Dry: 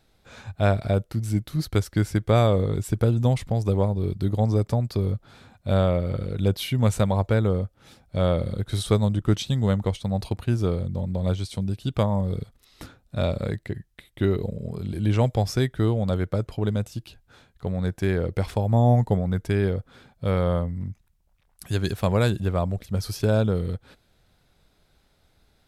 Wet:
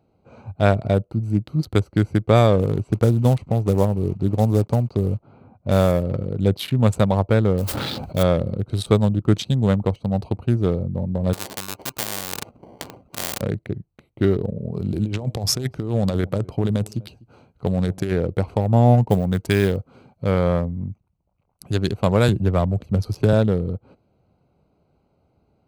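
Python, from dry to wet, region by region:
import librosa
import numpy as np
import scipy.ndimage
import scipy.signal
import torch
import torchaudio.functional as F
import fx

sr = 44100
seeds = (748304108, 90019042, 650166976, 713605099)

y = fx.chain(x, sr, fx.block_float(bits=5),
    fx.env_lowpass(base_hz=1900.0, full_db=-18.5), at=(2.57, 6.03))
y = fx.chain(y, sr, fx.high_shelf_res(hz=5800.0, db=-11.0, q=3.0),
    fx.mod_noise(seeds[0], snr_db=14),
    fx.sustainer(db_per_s=20.0), at=(7.57, 8.23))
y = fx.chain(y, sr, fx.sample_hold(seeds[1], rate_hz=1300.0, jitter_pct=0),
    fx.spectral_comp(ratio=4.0), at=(11.33, 13.41))
y = fx.chain(y, sr, fx.high_shelf(hz=2400.0, db=8.0),
    fx.over_compress(threshold_db=-24.0, ratio=-0.5),
    fx.echo_single(ms=249, db=-22.5), at=(14.75, 18.12))
y = fx.chain(y, sr, fx.block_float(bits=7),
    fx.high_shelf(hz=2100.0, db=11.0), at=(19.09, 20.24))
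y = fx.chain(y, sr, fx.low_shelf(hz=62.0, db=10.5),
    fx.band_squash(depth_pct=40), at=(22.28, 23.33))
y = fx.wiener(y, sr, points=25)
y = scipy.signal.sosfilt(scipy.signal.butter(2, 96.0, 'highpass', fs=sr, output='sos'), y)
y = y * librosa.db_to_amplitude(5.0)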